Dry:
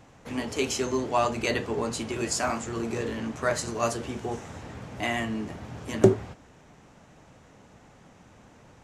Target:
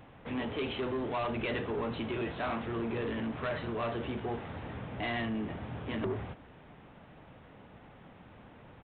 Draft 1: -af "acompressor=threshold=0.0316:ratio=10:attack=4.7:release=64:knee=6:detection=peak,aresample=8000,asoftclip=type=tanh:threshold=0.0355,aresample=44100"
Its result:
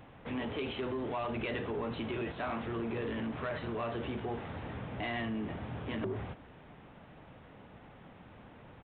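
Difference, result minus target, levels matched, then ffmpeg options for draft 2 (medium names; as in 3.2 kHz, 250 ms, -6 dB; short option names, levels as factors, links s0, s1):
compression: peak gain reduction +6 dB
-af "acompressor=threshold=0.0668:ratio=10:attack=4.7:release=64:knee=6:detection=peak,aresample=8000,asoftclip=type=tanh:threshold=0.0355,aresample=44100"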